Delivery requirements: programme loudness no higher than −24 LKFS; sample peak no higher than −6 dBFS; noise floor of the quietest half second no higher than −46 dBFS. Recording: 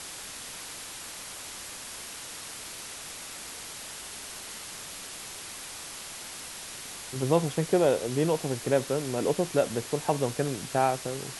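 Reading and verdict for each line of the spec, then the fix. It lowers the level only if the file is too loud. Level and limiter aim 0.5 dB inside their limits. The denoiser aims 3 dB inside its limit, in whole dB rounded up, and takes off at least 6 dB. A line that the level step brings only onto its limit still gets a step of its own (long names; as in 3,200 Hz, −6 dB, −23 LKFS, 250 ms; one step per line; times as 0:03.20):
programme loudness −31.0 LKFS: in spec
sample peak −9.0 dBFS: in spec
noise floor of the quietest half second −41 dBFS: out of spec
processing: broadband denoise 8 dB, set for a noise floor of −41 dBFS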